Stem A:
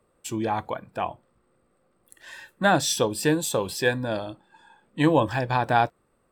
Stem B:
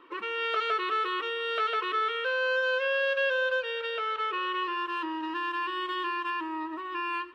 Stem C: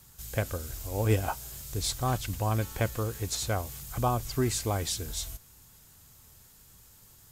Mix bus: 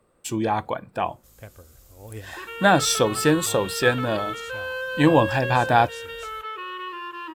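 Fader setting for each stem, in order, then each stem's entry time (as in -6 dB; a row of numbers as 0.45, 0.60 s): +3.0, -3.0, -13.0 dB; 0.00, 2.25, 1.05 s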